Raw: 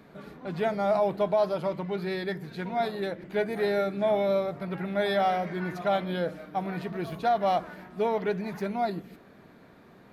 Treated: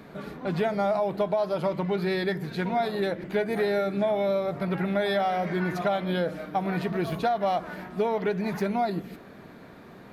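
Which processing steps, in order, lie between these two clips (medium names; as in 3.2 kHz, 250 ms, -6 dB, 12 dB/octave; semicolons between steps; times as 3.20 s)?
compression, threshold -29 dBFS, peak gain reduction 9 dB; trim +6.5 dB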